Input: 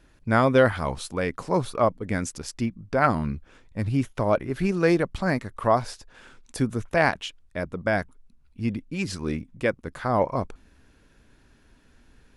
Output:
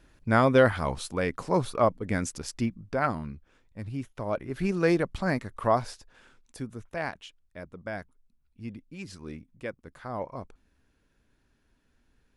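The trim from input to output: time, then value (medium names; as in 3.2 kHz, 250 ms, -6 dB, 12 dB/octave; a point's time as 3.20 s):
2.72 s -1.5 dB
3.33 s -10.5 dB
4.15 s -10.5 dB
4.70 s -3 dB
5.80 s -3 dB
6.63 s -12 dB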